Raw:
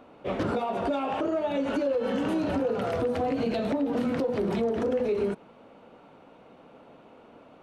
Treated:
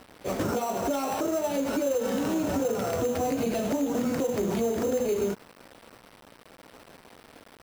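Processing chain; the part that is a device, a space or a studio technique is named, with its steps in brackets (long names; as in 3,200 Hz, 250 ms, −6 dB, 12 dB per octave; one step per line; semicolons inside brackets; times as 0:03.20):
early 8-bit sampler (sample-rate reduction 6,800 Hz, jitter 0%; bit reduction 8 bits)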